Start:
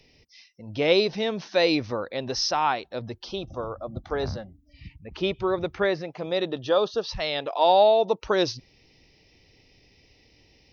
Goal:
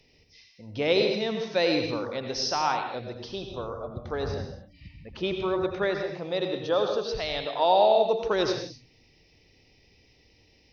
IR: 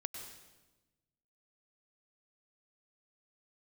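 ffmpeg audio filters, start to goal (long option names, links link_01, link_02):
-filter_complex "[1:a]atrim=start_sample=2205,afade=type=out:start_time=0.38:duration=0.01,atrim=end_sample=17199,asetrate=52920,aresample=44100[link_01];[0:a][link_01]afir=irnorm=-1:irlink=0,volume=1dB"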